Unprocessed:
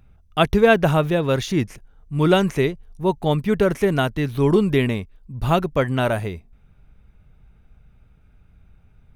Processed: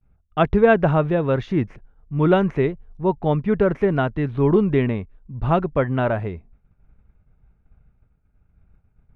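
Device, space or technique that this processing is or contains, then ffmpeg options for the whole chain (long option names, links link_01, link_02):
hearing-loss simulation: -af "lowpass=1800,agate=range=-33dB:threshold=-44dB:ratio=3:detection=peak"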